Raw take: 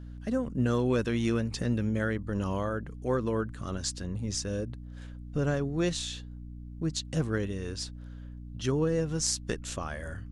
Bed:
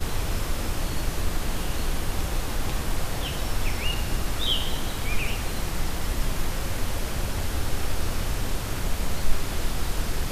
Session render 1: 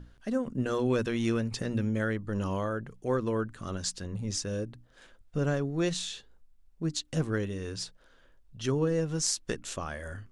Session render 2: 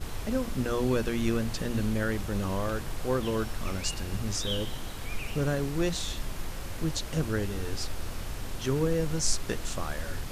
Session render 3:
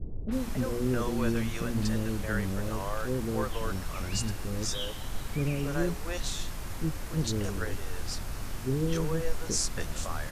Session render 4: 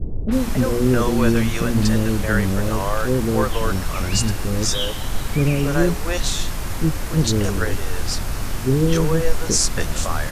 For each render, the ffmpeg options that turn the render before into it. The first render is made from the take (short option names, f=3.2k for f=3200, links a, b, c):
-af "bandreject=f=60:t=h:w=6,bandreject=f=120:t=h:w=6,bandreject=f=180:t=h:w=6,bandreject=f=240:t=h:w=6,bandreject=f=300:t=h:w=6"
-filter_complex "[1:a]volume=-9dB[a];[0:a][a]amix=inputs=2:normalize=0"
-filter_complex "[0:a]acrossover=split=480|3300[a][b][c];[b]adelay=280[d];[c]adelay=310[e];[a][d][e]amix=inputs=3:normalize=0"
-af "volume=11.5dB,alimiter=limit=-1dB:level=0:latency=1"